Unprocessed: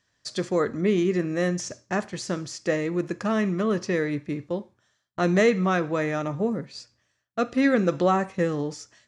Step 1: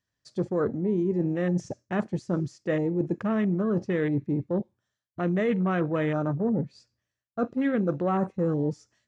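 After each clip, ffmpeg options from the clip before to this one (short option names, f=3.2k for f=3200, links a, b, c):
-af "afwtdn=0.0251,lowshelf=f=340:g=7,areverse,acompressor=threshold=-25dB:ratio=6,areverse,volume=2dB"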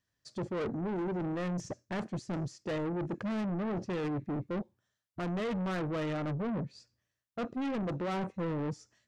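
-af "asoftclip=type=tanh:threshold=-31.5dB"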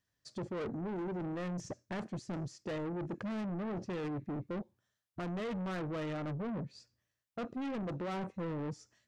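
-af "acompressor=threshold=-37dB:ratio=2.5,volume=-1dB"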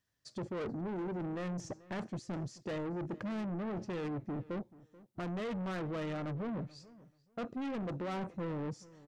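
-filter_complex "[0:a]asplit=2[a][b];[b]adelay=434,lowpass=f=2.7k:p=1,volume=-20dB,asplit=2[c][d];[d]adelay=434,lowpass=f=2.7k:p=1,volume=0.2[e];[a][c][e]amix=inputs=3:normalize=0"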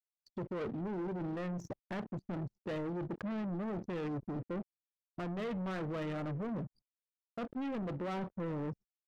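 -af "flanger=delay=3.2:depth=5.9:regen=-89:speed=0.27:shape=triangular,aeval=exprs='val(0)*gte(abs(val(0)),0.00224)':c=same,anlmdn=0.00398,volume=4.5dB"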